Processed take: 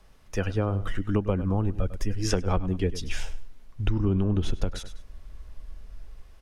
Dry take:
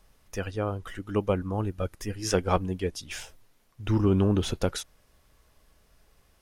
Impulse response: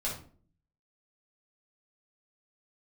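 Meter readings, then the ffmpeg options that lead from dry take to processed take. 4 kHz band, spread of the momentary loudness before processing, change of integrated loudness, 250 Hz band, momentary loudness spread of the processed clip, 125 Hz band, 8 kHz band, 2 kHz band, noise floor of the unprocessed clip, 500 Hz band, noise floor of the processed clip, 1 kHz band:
−1.5 dB, 15 LU, +0.5 dB, 0.0 dB, 22 LU, +2.5 dB, −2.0 dB, 0.0 dB, −64 dBFS, −2.5 dB, −51 dBFS, −3.0 dB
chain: -filter_complex "[0:a]asubboost=boost=5:cutoff=51,acrossover=split=260|1200|3700[link_01][link_02][link_03][link_04];[link_01]dynaudnorm=framelen=190:gausssize=5:maxgain=8dB[link_05];[link_05][link_02][link_03][link_04]amix=inputs=4:normalize=0,highshelf=frequency=8100:gain=-11,aecho=1:1:100|200:0.15|0.0374,acompressor=threshold=-25dB:ratio=8,volume=4.5dB"

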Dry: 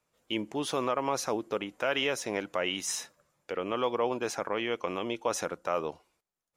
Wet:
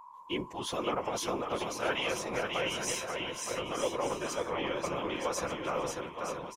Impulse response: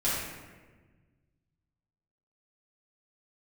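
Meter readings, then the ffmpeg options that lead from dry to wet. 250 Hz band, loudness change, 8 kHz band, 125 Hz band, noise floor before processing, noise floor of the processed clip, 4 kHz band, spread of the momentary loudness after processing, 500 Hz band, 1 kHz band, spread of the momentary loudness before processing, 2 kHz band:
−2.5 dB, −2.0 dB, −0.5 dB, +1.5 dB, below −85 dBFS, −49 dBFS, −1.0 dB, 5 LU, −2.0 dB, −1.0 dB, 6 LU, −1.0 dB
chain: -af "asubboost=boost=4.5:cutoff=120,afftfilt=real='hypot(re,im)*cos(PI*b)':imag='0':win_size=1024:overlap=0.75,aeval=exprs='val(0)+0.00355*sin(2*PI*1000*n/s)':channel_layout=same,afftfilt=real='hypot(re,im)*cos(2*PI*random(0))':imag='hypot(re,im)*sin(2*PI*random(1))':win_size=512:overlap=0.75,aecho=1:1:540|918|1183|1368|1497:0.631|0.398|0.251|0.158|0.1,volume=6.5dB"

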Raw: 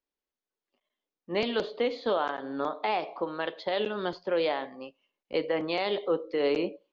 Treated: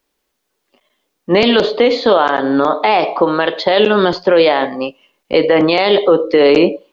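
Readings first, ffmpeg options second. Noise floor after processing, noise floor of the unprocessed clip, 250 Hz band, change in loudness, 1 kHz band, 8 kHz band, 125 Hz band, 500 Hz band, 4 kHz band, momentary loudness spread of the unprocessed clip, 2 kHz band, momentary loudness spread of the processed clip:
−71 dBFS, below −85 dBFS, +19.0 dB, +17.5 dB, +17.0 dB, can't be measured, +19.0 dB, +17.5 dB, +17.5 dB, 6 LU, +17.0 dB, 5 LU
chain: -af "alimiter=level_in=22.5dB:limit=-1dB:release=50:level=0:latency=1,volume=-1dB"

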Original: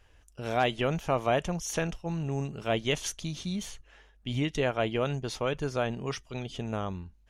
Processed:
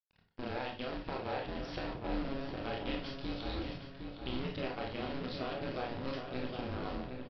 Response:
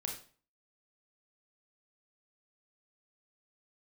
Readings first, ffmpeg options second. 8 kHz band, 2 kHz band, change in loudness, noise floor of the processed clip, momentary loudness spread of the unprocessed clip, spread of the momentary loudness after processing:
below −30 dB, −8.0 dB, −8.5 dB, −67 dBFS, 9 LU, 3 LU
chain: -filter_complex "[0:a]agate=range=-12dB:threshold=-57dB:ratio=16:detection=peak,acompressor=threshold=-33dB:ratio=16,acrusher=bits=7:dc=4:mix=0:aa=0.000001,aresample=11025,aresample=44100,aeval=exprs='val(0)*sin(2*PI*130*n/s)':channel_layout=same,asplit=2[link_01][link_02];[link_02]adelay=761,lowpass=frequency=2600:poles=1,volume=-5.5dB,asplit=2[link_03][link_04];[link_04]adelay=761,lowpass=frequency=2600:poles=1,volume=0.47,asplit=2[link_05][link_06];[link_06]adelay=761,lowpass=frequency=2600:poles=1,volume=0.47,asplit=2[link_07][link_08];[link_08]adelay=761,lowpass=frequency=2600:poles=1,volume=0.47,asplit=2[link_09][link_10];[link_10]adelay=761,lowpass=frequency=2600:poles=1,volume=0.47,asplit=2[link_11][link_12];[link_12]adelay=761,lowpass=frequency=2600:poles=1,volume=0.47[link_13];[link_01][link_03][link_05][link_07][link_09][link_11][link_13]amix=inputs=7:normalize=0[link_14];[1:a]atrim=start_sample=2205,asetrate=52920,aresample=44100[link_15];[link_14][link_15]afir=irnorm=-1:irlink=0,volume=2.5dB"

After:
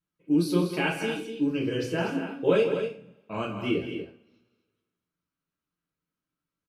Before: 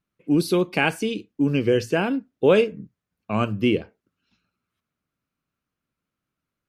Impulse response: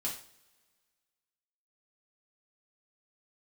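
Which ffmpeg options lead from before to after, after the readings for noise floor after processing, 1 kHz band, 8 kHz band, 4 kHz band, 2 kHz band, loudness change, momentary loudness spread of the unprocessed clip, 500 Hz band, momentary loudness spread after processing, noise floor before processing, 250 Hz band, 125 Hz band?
below −85 dBFS, −6.0 dB, can't be measured, −4.5 dB, −5.5 dB, −5.0 dB, 9 LU, −5.5 dB, 13 LU, −85 dBFS, −4.0 dB, −5.5 dB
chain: -filter_complex "[0:a]aecho=1:1:163.3|242:0.282|0.355[link_01];[1:a]atrim=start_sample=2205,asetrate=57330,aresample=44100[link_02];[link_01][link_02]afir=irnorm=-1:irlink=0,volume=-6dB"

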